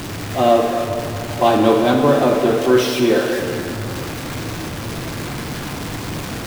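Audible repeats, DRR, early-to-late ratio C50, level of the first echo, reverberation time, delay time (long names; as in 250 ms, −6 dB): no echo audible, 3.0 dB, 4.0 dB, no echo audible, 2.8 s, no echo audible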